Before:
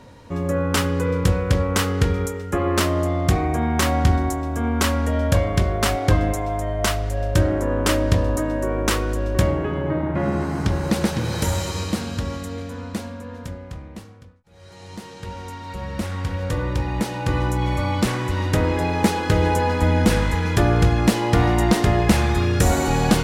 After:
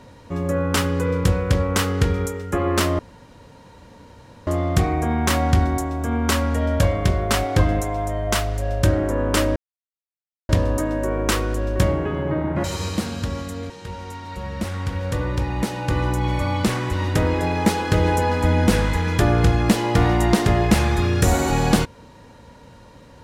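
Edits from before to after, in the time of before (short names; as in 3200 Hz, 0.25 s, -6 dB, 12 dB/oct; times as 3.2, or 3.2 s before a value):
2.99 insert room tone 1.48 s
8.08 insert silence 0.93 s
10.23–11.59 cut
12.65–15.08 cut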